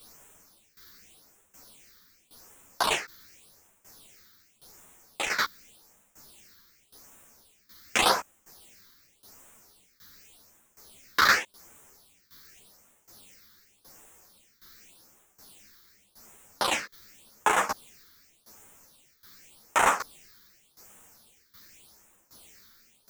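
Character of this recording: a quantiser's noise floor 10-bit, dither triangular; phasing stages 6, 0.87 Hz, lowest notch 700–4500 Hz; tremolo saw down 1.3 Hz, depth 90%; a shimmering, thickened sound

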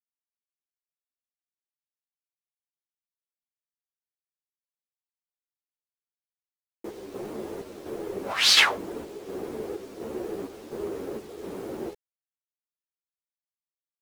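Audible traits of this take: chopped level 1.4 Hz, depth 60%, duty 65%; a quantiser's noise floor 10-bit, dither none; a shimmering, thickened sound

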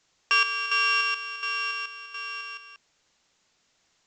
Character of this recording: a buzz of ramps at a fixed pitch in blocks of 16 samples; chopped level 1.4 Hz, depth 65%, duty 60%; a quantiser's noise floor 12-bit, dither triangular; A-law

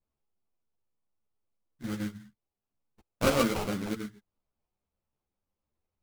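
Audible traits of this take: aliases and images of a low sample rate 1.8 kHz, jitter 20%; a shimmering, thickened sound

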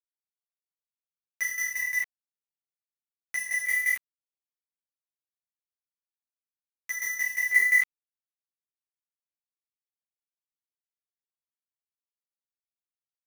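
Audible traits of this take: a quantiser's noise floor 6-bit, dither none; tremolo saw down 5.7 Hz, depth 80%; a shimmering, thickened sound

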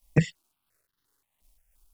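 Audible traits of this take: a quantiser's noise floor 12-bit, dither none; tremolo triangle 2.9 Hz, depth 50%; notches that jump at a steady rate 5.7 Hz 400–2400 Hz

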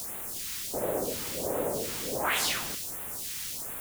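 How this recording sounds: a quantiser's noise floor 6-bit, dither triangular; phasing stages 2, 1.4 Hz, lowest notch 540–4800 Hz

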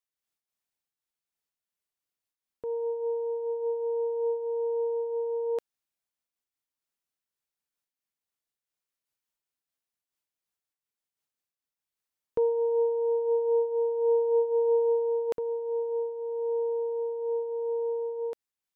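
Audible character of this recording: random flutter of the level

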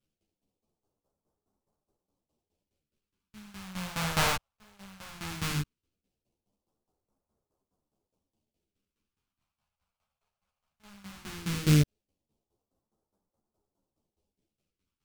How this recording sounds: aliases and images of a low sample rate 1.9 kHz, jitter 20%; phasing stages 2, 0.17 Hz, lowest notch 300–2400 Hz; tremolo saw down 4.8 Hz, depth 85%; a shimmering, thickened sound

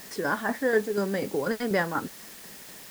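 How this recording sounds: tremolo saw down 4.1 Hz, depth 55%; a quantiser's noise floor 8-bit, dither triangular

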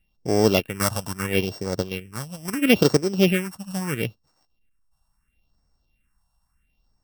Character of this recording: a buzz of ramps at a fixed pitch in blocks of 16 samples; phasing stages 4, 0.75 Hz, lowest notch 360–2800 Hz

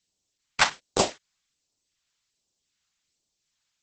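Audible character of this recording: phasing stages 2, 1.3 Hz, lowest notch 380–1600 Hz; Opus

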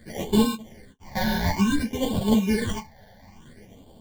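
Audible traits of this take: aliases and images of a low sample rate 1.3 kHz, jitter 0%; phasing stages 8, 0.57 Hz, lowest notch 340–1900 Hz; tremolo triangle 0.96 Hz, depth 40%; a shimmering, thickened sound

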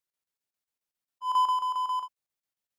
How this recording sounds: chopped level 7.4 Hz, depth 65%, duty 75%

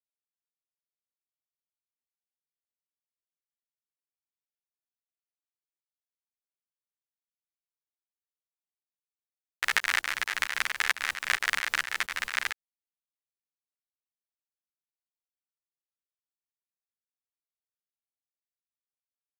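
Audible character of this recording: tremolo saw up 4.4 Hz, depth 75%; a quantiser's noise floor 10-bit, dither none; a shimmering, thickened sound

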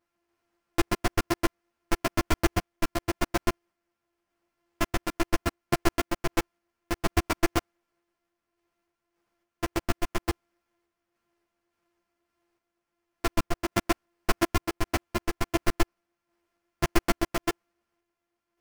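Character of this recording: a buzz of ramps at a fixed pitch in blocks of 128 samples; random-step tremolo 3.5 Hz; aliases and images of a low sample rate 3.8 kHz, jitter 20%; a shimmering, thickened sound

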